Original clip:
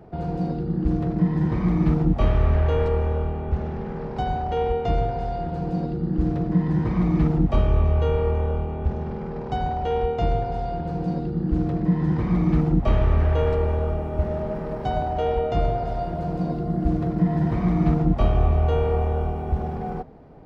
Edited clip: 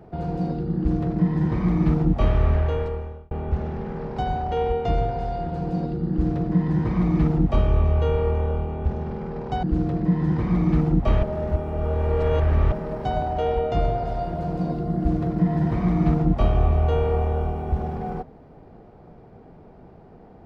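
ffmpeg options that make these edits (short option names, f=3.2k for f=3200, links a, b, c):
-filter_complex "[0:a]asplit=5[a][b][c][d][e];[a]atrim=end=3.31,asetpts=PTS-STARTPTS,afade=t=out:st=2.5:d=0.81[f];[b]atrim=start=3.31:end=9.632,asetpts=PTS-STARTPTS,afade=t=in:d=0.004:c=hsin[g];[c]atrim=start=11.428:end=13.032[h];[d]atrim=start=13.028:end=14.522,asetpts=PTS-STARTPTS,areverse[i];[e]atrim=start=14.518[j];[f][g]concat=n=2:v=0:a=1[k];[k][h]acrossfade=d=0.004:c1=hsin:c2=hsin[l];[l][i]acrossfade=d=0.004:c1=hsin:c2=hsin[m];[m][j]acrossfade=d=0.004:c1=hsin:c2=hsin"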